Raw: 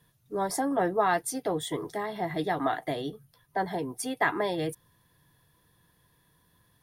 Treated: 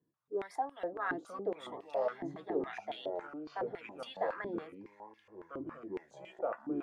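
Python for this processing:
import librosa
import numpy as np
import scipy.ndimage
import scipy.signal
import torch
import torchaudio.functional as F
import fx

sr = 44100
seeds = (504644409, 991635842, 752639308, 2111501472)

y = fx.echo_pitch(x, sr, ms=470, semitones=-6, count=2, db_per_echo=-3.0)
y = fx.filter_held_bandpass(y, sr, hz=7.2, low_hz=310.0, high_hz=3000.0)
y = y * 10.0 ** (-1.0 / 20.0)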